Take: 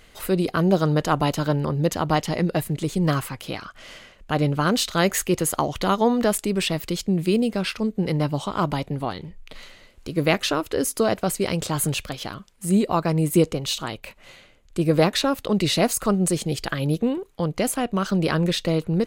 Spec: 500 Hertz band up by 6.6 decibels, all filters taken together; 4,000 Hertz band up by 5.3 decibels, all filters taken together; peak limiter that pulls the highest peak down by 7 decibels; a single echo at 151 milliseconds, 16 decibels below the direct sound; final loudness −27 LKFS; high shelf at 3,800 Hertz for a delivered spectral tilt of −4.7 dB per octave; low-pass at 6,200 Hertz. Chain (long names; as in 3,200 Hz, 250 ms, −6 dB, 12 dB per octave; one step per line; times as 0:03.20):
low-pass filter 6,200 Hz
parametric band 500 Hz +8 dB
high-shelf EQ 3,800 Hz −3.5 dB
parametric band 4,000 Hz +9 dB
brickwall limiter −8 dBFS
single-tap delay 151 ms −16 dB
level −6.5 dB